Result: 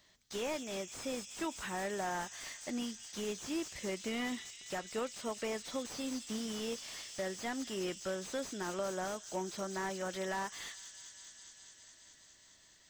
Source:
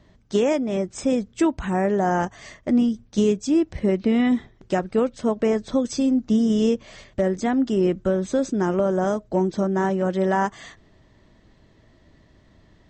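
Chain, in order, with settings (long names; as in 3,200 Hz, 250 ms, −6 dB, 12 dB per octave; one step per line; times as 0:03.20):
first-order pre-emphasis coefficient 0.97
in parallel at +1 dB: brickwall limiter −34 dBFS, peak gain reduction 11.5 dB
on the sum: delay with a high-pass on its return 207 ms, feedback 82%, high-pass 3,800 Hz, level −7.5 dB
slew-rate limiting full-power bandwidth 30 Hz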